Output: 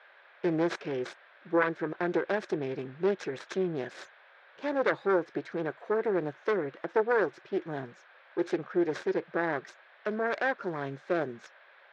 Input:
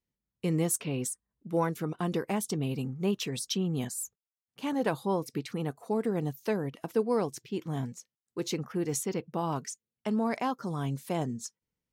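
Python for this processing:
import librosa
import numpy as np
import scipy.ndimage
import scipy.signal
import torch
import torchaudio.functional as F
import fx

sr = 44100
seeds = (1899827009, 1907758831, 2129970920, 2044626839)

y = fx.self_delay(x, sr, depth_ms=0.49)
y = fx.dmg_noise_band(y, sr, seeds[0], low_hz=520.0, high_hz=3300.0, level_db=-60.0)
y = fx.cabinet(y, sr, low_hz=230.0, low_slope=12, high_hz=4700.0, hz=(240.0, 360.0, 560.0, 1600.0, 2900.0, 4600.0), db=(-9, 8, 7, 10, -8, -5))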